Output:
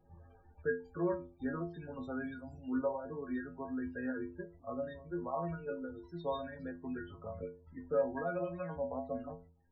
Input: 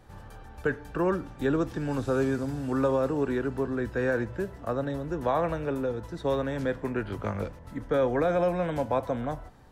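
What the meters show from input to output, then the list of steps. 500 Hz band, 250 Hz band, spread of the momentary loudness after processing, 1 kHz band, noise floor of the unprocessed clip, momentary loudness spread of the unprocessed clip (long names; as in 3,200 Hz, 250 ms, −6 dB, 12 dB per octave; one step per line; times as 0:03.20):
−10.5 dB, −9.5 dB, 10 LU, −11.0 dB, −47 dBFS, 8 LU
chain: reverb reduction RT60 1.2 s
spectral peaks only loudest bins 32
stiff-string resonator 82 Hz, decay 0.48 s, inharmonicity 0.008
level +2 dB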